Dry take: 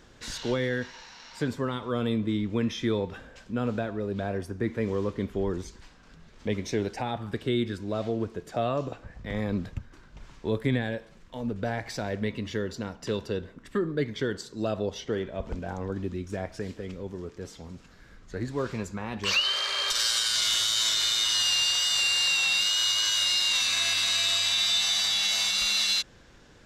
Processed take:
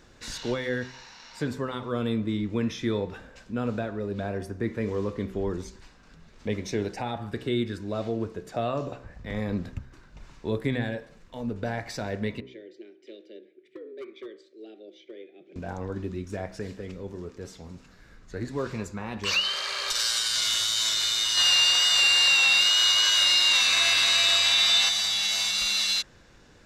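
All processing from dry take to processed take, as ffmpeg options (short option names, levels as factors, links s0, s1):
-filter_complex "[0:a]asettb=1/sr,asplit=3[s0][s1][s2];[s0]atrim=end=12.404[s3];[s1]atrim=start=12.4:end=15.56,asetpts=PTS-STARTPTS,afade=t=in:d=0.004:c=qsin,afade=t=out:st=3.156:d=0.004:c=qsin,asplit=3[s4][s5][s6];[s4]bandpass=f=270:t=q:w=8,volume=1[s7];[s5]bandpass=f=2290:t=q:w=8,volume=0.501[s8];[s6]bandpass=f=3010:t=q:w=8,volume=0.355[s9];[s7][s8][s9]amix=inputs=3:normalize=0,afreqshift=110,asoftclip=type=hard:threshold=0.0211[s10];[s2]atrim=start=15.556[s11];[s3][s10]acrossfade=d=0.004:c1=hsin:c2=qsin[s12];[s12][s11]acrossfade=d=0.004:c1=qsin:c2=hsin,asettb=1/sr,asplit=3[s13][s14][s15];[s13]atrim=end=21.374[s16];[s14]atrim=start=21.37:end=24.89,asetpts=PTS-STARTPTS,afade=t=in:d=0.004:c=qsin,afade=t=out:st=3.516:d=0.004:c=qsin,bass=f=250:g=-7,treble=f=4000:g=-6,acontrast=79[s17];[s15]atrim=start=24.886[s18];[s16][s17]acrossfade=d=0.004:c1=hsin:c2=qsin[s19];[s19][s18]acrossfade=d=0.004:c1=qsin:c2=hsin,bandreject=f=3200:w=17,bandreject=f=63.85:t=h:w=4,bandreject=f=127.7:t=h:w=4,bandreject=f=191.55:t=h:w=4,bandreject=f=255.4:t=h:w=4,bandreject=f=319.25:t=h:w=4,bandreject=f=383.1:t=h:w=4,bandreject=f=446.95:t=h:w=4,bandreject=f=510.8:t=h:w=4,bandreject=f=574.65:t=h:w=4,bandreject=f=638.5:t=h:w=4,bandreject=f=702.35:t=h:w=4,bandreject=f=766.2:t=h:w=4,bandreject=f=830.05:t=h:w=4,bandreject=f=893.9:t=h:w=4,bandreject=f=957.75:t=h:w=4,bandreject=f=1021.6:t=h:w=4,bandreject=f=1085.45:t=h:w=4,bandreject=f=1149.3:t=h:w=4,bandreject=f=1213.15:t=h:w=4,bandreject=f=1277:t=h:w=4,bandreject=f=1340.85:t=h:w=4,bandreject=f=1404.7:t=h:w=4,bandreject=f=1468.55:t=h:w=4,bandreject=f=1532.4:t=h:w=4,bandreject=f=1596.25:t=h:w=4,bandreject=f=1660.1:t=h:w=4,bandreject=f=1723.95:t=h:w=4,bandreject=f=1787.8:t=h:w=4,bandreject=f=1851.65:t=h:w=4,bandreject=f=1915.5:t=h:w=4,bandreject=f=1979.35:t=h:w=4,bandreject=f=2043.2:t=h:w=4"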